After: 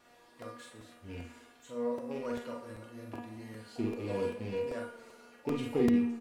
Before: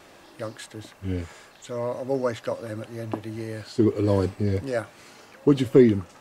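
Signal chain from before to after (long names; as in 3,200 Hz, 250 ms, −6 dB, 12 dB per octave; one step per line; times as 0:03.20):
loose part that buzzes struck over −29 dBFS, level −27 dBFS
tuned comb filter 240 Hz, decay 0.47 s, harmonics all, mix 90%
pitch-shifted copies added +12 semitones −18 dB
double-tracking delay 46 ms −3 dB
tape delay 61 ms, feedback 85%, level −14.5 dB, low-pass 4,500 Hz
compressor whose output falls as the input rises −23 dBFS, ratio −1
regular buffer underruns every 0.39 s, samples 128, repeat, from 0:00.42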